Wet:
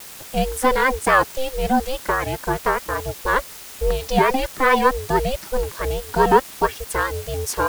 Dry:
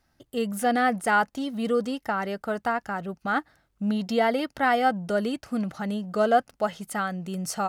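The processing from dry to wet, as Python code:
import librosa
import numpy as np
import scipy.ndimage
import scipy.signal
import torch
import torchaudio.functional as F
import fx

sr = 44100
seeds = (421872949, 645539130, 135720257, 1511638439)

p1 = fx.dereverb_blind(x, sr, rt60_s=0.9)
p2 = fx.quant_dither(p1, sr, seeds[0], bits=6, dither='triangular')
p3 = p1 + (p2 * 10.0 ** (-4.5 / 20.0))
p4 = fx.vibrato(p3, sr, rate_hz=4.7, depth_cents=94.0)
p5 = p4 * np.sin(2.0 * np.pi * 260.0 * np.arange(len(p4)) / sr)
y = p5 * 10.0 ** (5.5 / 20.0)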